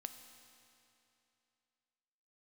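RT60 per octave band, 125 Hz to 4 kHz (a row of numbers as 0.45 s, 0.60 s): 2.8 s, 2.8 s, 2.8 s, 2.8 s, 2.7 s, 2.6 s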